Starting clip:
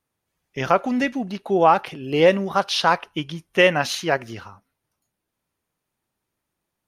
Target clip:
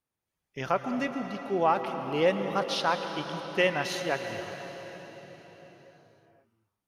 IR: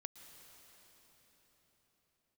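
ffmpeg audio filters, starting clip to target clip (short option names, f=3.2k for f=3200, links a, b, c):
-filter_complex "[1:a]atrim=start_sample=2205[a];[0:a][a]afir=irnorm=-1:irlink=0,volume=-3.5dB"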